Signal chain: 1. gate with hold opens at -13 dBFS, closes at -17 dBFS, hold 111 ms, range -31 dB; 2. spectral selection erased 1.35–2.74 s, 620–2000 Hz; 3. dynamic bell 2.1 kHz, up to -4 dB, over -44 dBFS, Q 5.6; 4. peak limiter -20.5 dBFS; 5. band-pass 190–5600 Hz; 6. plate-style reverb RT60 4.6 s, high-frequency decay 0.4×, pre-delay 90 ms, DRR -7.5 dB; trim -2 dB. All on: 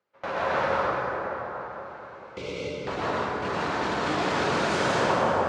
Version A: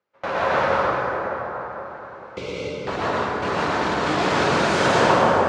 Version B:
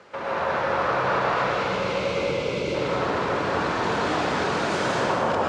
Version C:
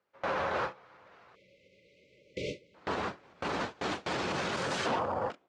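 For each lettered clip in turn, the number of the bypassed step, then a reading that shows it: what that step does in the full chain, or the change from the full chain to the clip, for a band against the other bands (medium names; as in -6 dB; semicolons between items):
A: 4, mean gain reduction 3.0 dB; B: 1, momentary loudness spread change -11 LU; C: 6, momentary loudness spread change -5 LU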